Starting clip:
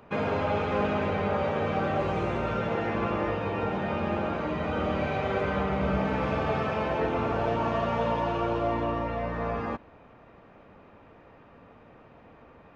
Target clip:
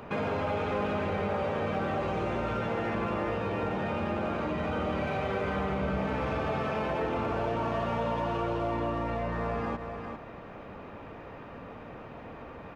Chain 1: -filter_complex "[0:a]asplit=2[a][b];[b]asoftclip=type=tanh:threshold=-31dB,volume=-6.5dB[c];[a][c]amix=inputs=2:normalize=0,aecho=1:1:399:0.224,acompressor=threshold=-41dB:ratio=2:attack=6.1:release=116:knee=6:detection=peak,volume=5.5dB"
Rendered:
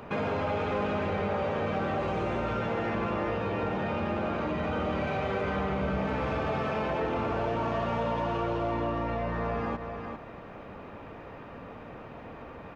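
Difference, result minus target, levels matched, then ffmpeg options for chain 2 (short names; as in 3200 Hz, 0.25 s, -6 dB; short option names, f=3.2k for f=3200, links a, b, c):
soft clip: distortion -5 dB
-filter_complex "[0:a]asplit=2[a][b];[b]asoftclip=type=tanh:threshold=-43dB,volume=-6.5dB[c];[a][c]amix=inputs=2:normalize=0,aecho=1:1:399:0.224,acompressor=threshold=-41dB:ratio=2:attack=6.1:release=116:knee=6:detection=peak,volume=5.5dB"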